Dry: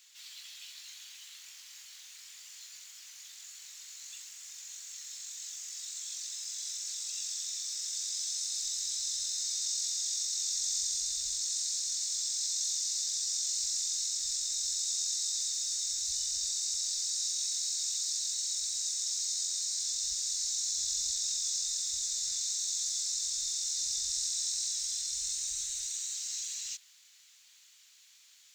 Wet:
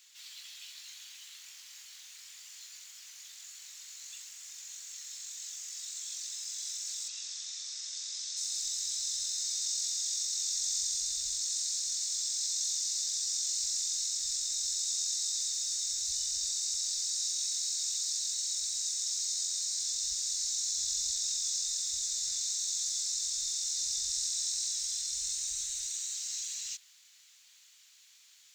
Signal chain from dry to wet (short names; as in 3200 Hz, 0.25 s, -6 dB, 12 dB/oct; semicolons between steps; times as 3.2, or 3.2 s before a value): 7.08–8.37 BPF 120–5700 Hz